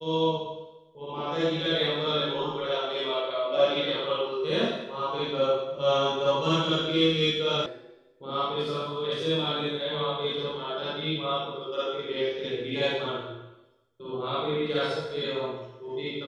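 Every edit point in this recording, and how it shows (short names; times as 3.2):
7.66 sound cut off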